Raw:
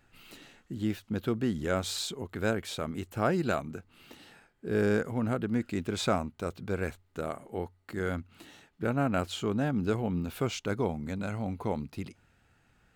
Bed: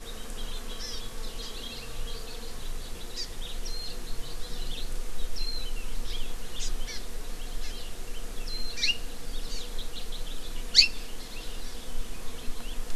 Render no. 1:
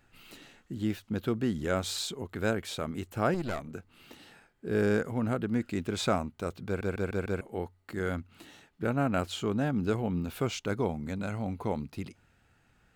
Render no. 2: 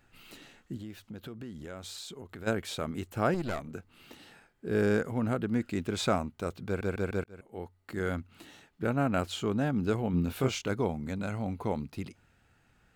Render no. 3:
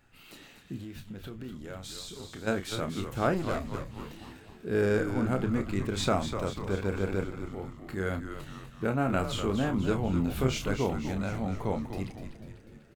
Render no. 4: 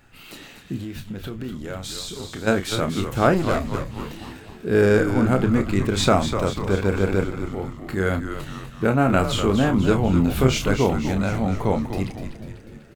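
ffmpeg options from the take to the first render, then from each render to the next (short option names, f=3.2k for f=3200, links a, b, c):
-filter_complex "[0:a]asettb=1/sr,asplit=3[a][b][c];[a]atrim=end=3.344[d];[b]atrim=start=3.34:end=3.74,asetpts=PTS-STARTPTS,afade=t=in:d=0.004:c=qsin,afade=t=out:st=0.396:d=0.004:c=qsin,aeval=exprs='(tanh(22.4*val(0)+0.6)-tanh(0.6))/22.4':c=same[e];[c]atrim=start=3.736[f];[d][e]acrossfade=d=0.004:c1=hsin:c2=qsin[g];[g][f]acrossfade=d=0.004:c1=qsin:c2=hsin,asplit=6[h][i][j][k][l][m];[h]atrim=end=6.812[n];[i]atrim=start=6.658:end=6.812[o];[j]atrim=start=6.658:end=6.812[p];[k]atrim=start=6.658:end=6.812[q];[l]atrim=start=6.658:end=6.812[r];[m]atrim=start=7.408[s];[n][o]acrossfade=d=0.004:c1=hsin:c2=hsin[t];[t][p]acrossfade=d=0.004:c1=hsin:c2=hsin[u];[u][q]acrossfade=d=0.004:c1=hsin:c2=hsin[v];[v][r]acrossfade=d=0.004:c1=hsin:c2=hsin[w];[w][s]acrossfade=d=0.004:c1=hsin:c2=hsin"
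-filter_complex "[0:a]asplit=3[a][b][c];[a]afade=t=out:st=0.76:d=0.02[d];[b]acompressor=threshold=-41dB:ratio=4:attack=3.2:release=140:knee=1:detection=peak,afade=t=in:st=0.76:d=0.02,afade=t=out:st=2.46:d=0.02[e];[c]afade=t=in:st=2.46:d=0.02[f];[d][e][f]amix=inputs=3:normalize=0,asettb=1/sr,asplit=3[g][h][i];[g]atrim=end=10.114[j];[h]atrim=start=10.11:end=10.69,asetpts=PTS-STARTPTS,afade=t=in:d=0.004:c=qsin,afade=t=out:st=0.576:d=0.004:c=qsin,asplit=2[k][l];[l]adelay=23,volume=-4dB[m];[k][m]amix=inputs=2:normalize=0,atrim=end_sample=25578[n];[i]atrim=start=10.686[o];[j][n]acrossfade=d=0.004:c1=hsin:c2=qsin[p];[p][o]acrossfade=d=0.004:c1=qsin:c2=hsin,asplit=2[q][r];[q]atrim=end=7.24,asetpts=PTS-STARTPTS,afade=t=out:st=7.236:d=0.004:c=hsin[s];[r]atrim=start=7.24,asetpts=PTS-STARTPTS,afade=t=in:d=0.68[t];[s][t]concat=n=2:v=0:a=1"
-filter_complex "[0:a]asplit=2[a][b];[b]adelay=31,volume=-8dB[c];[a][c]amix=inputs=2:normalize=0,asplit=2[d][e];[e]asplit=7[f][g][h][i][j][k][l];[f]adelay=247,afreqshift=-110,volume=-8dB[m];[g]adelay=494,afreqshift=-220,volume=-13dB[n];[h]adelay=741,afreqshift=-330,volume=-18.1dB[o];[i]adelay=988,afreqshift=-440,volume=-23.1dB[p];[j]adelay=1235,afreqshift=-550,volume=-28.1dB[q];[k]adelay=1482,afreqshift=-660,volume=-33.2dB[r];[l]adelay=1729,afreqshift=-770,volume=-38.2dB[s];[m][n][o][p][q][r][s]amix=inputs=7:normalize=0[t];[d][t]amix=inputs=2:normalize=0"
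-af "volume=9.5dB"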